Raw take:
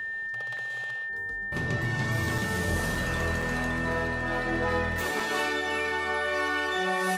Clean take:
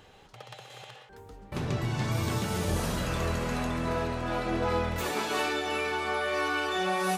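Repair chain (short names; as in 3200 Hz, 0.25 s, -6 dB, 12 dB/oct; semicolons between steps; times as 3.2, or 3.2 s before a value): notch 1800 Hz, Q 30; interpolate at 0.57/2.38/2.95/3.42/5.2, 3.6 ms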